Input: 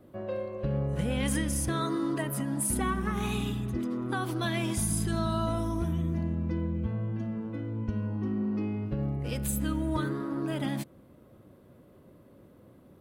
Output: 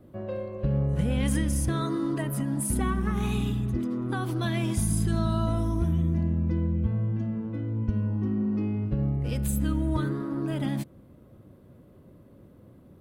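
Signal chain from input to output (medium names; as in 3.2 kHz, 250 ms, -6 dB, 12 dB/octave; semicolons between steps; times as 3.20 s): bass shelf 240 Hz +8.5 dB; trim -1.5 dB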